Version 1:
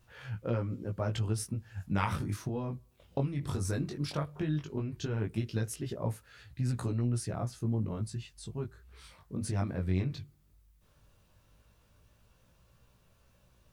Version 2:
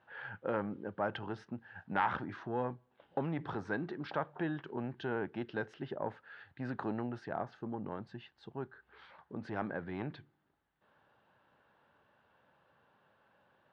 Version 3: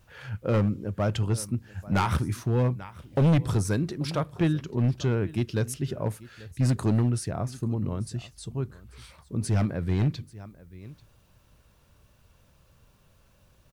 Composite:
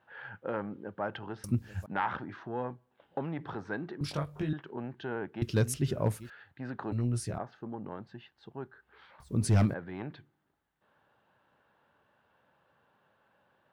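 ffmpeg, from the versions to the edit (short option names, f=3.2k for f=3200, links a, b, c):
-filter_complex "[2:a]asplit=3[a][b][c];[0:a]asplit=2[d][e];[1:a]asplit=6[f][g][h][i][j][k];[f]atrim=end=1.442[l];[a]atrim=start=1.438:end=1.862[m];[g]atrim=start=1.858:end=4.012[n];[d]atrim=start=4.008:end=4.532[o];[h]atrim=start=4.528:end=5.422[p];[b]atrim=start=5.418:end=6.302[q];[i]atrim=start=6.298:end=6.922[r];[e]atrim=start=6.918:end=7.382[s];[j]atrim=start=7.378:end=9.202[t];[c]atrim=start=9.198:end=9.742[u];[k]atrim=start=9.738[v];[l][m]acrossfade=d=0.004:c1=hsin:c2=hsin[w];[w][n]acrossfade=d=0.004:c1=hsin:c2=hsin[x];[x][o]acrossfade=d=0.004:c1=hsin:c2=hsin[y];[y][p]acrossfade=d=0.004:c1=hsin:c2=hsin[z];[z][q]acrossfade=d=0.004:c1=hsin:c2=hsin[aa];[aa][r]acrossfade=d=0.004:c1=hsin:c2=hsin[ab];[ab][s]acrossfade=d=0.004:c1=hsin:c2=hsin[ac];[ac][t]acrossfade=d=0.004:c1=hsin:c2=hsin[ad];[ad][u]acrossfade=d=0.004:c1=hsin:c2=hsin[ae];[ae][v]acrossfade=d=0.004:c1=hsin:c2=hsin"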